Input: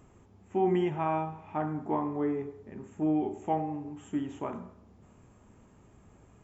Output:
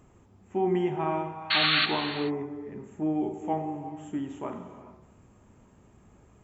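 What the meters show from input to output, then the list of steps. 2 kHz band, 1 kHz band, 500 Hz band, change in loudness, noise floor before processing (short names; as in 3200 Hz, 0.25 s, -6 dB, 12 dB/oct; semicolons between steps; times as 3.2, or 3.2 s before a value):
+17.0 dB, +1.0 dB, +1.0 dB, +3.5 dB, -59 dBFS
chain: painted sound noise, 1.5–1.86, 1100–4500 Hz -24 dBFS; non-linear reverb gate 0.46 s flat, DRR 8.5 dB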